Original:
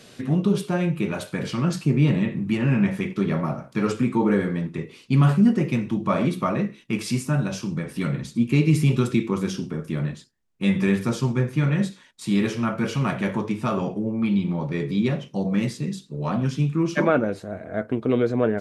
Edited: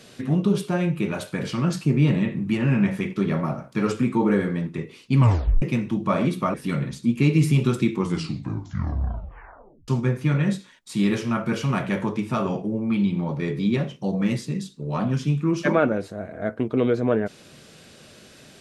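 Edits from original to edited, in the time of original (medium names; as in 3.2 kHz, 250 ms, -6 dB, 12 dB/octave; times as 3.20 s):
5.18 s: tape stop 0.44 s
6.54–7.86 s: delete
9.27 s: tape stop 1.93 s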